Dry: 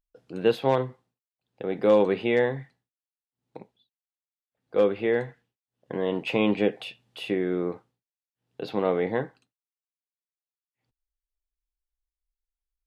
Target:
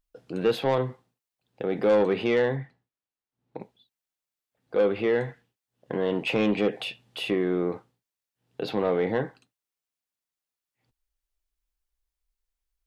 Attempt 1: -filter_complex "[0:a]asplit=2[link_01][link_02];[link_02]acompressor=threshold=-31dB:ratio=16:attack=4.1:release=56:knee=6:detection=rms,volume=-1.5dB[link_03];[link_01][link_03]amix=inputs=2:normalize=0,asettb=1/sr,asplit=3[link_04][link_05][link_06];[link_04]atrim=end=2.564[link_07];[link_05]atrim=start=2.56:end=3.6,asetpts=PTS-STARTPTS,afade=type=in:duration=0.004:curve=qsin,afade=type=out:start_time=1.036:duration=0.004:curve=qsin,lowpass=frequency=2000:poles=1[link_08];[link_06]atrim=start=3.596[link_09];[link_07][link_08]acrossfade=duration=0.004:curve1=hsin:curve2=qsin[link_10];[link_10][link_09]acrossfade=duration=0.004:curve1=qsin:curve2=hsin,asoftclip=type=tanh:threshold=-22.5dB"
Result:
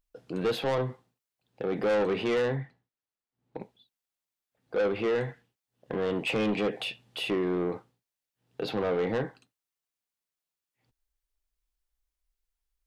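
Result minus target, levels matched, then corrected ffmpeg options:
soft clipping: distortion +8 dB
-filter_complex "[0:a]asplit=2[link_01][link_02];[link_02]acompressor=threshold=-31dB:ratio=16:attack=4.1:release=56:knee=6:detection=rms,volume=-1.5dB[link_03];[link_01][link_03]amix=inputs=2:normalize=0,asettb=1/sr,asplit=3[link_04][link_05][link_06];[link_04]atrim=end=2.564[link_07];[link_05]atrim=start=2.56:end=3.6,asetpts=PTS-STARTPTS,afade=type=in:duration=0.004:curve=qsin,afade=type=out:start_time=1.036:duration=0.004:curve=qsin,lowpass=frequency=2000:poles=1[link_08];[link_06]atrim=start=3.596[link_09];[link_07][link_08]acrossfade=duration=0.004:curve1=hsin:curve2=qsin[link_10];[link_10][link_09]acrossfade=duration=0.004:curve1=qsin:curve2=hsin,asoftclip=type=tanh:threshold=-14.5dB"

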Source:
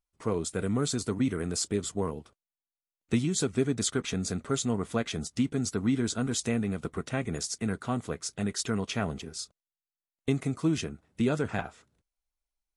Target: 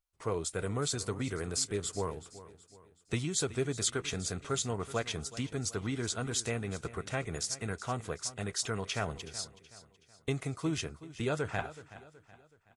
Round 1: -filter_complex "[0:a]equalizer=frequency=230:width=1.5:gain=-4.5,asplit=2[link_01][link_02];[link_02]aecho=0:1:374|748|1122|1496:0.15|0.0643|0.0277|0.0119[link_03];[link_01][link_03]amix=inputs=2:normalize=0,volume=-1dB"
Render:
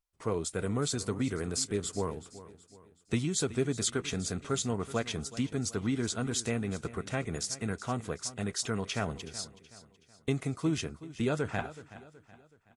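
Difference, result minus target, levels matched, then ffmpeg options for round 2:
250 Hz band +3.5 dB
-filter_complex "[0:a]equalizer=frequency=230:width=1.5:gain=-11.5,asplit=2[link_01][link_02];[link_02]aecho=0:1:374|748|1122|1496:0.15|0.0643|0.0277|0.0119[link_03];[link_01][link_03]amix=inputs=2:normalize=0,volume=-1dB"

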